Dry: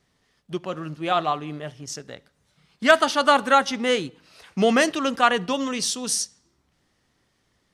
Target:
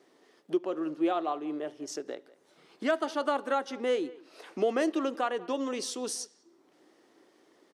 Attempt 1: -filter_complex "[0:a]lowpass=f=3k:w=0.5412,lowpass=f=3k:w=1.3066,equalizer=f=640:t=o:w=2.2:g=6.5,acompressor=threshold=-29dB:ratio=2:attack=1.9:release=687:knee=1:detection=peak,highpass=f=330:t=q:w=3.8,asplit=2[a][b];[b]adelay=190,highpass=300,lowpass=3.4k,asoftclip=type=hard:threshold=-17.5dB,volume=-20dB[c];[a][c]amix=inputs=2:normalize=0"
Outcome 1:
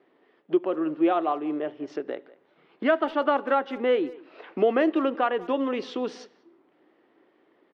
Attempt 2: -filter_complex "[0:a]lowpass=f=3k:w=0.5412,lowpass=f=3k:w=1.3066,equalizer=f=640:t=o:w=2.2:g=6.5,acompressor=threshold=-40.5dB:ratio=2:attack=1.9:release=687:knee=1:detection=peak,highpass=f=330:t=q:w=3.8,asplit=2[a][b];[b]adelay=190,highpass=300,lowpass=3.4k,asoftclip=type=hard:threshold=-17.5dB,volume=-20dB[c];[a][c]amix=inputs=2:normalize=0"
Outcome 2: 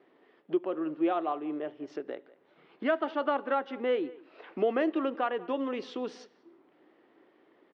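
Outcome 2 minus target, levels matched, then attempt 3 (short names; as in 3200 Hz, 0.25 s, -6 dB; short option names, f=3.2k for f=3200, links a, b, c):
4000 Hz band -5.5 dB
-filter_complex "[0:a]equalizer=f=640:t=o:w=2.2:g=6.5,acompressor=threshold=-40.5dB:ratio=2:attack=1.9:release=687:knee=1:detection=peak,highpass=f=330:t=q:w=3.8,asplit=2[a][b];[b]adelay=190,highpass=300,lowpass=3.4k,asoftclip=type=hard:threshold=-17.5dB,volume=-20dB[c];[a][c]amix=inputs=2:normalize=0"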